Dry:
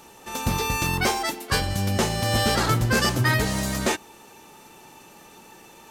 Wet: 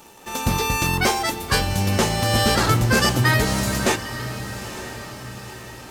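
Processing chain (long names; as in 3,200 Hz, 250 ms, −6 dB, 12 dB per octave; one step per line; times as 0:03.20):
in parallel at −7 dB: bit reduction 7 bits
on the sum: feedback delay with all-pass diffusion 925 ms, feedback 50%, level −12 dB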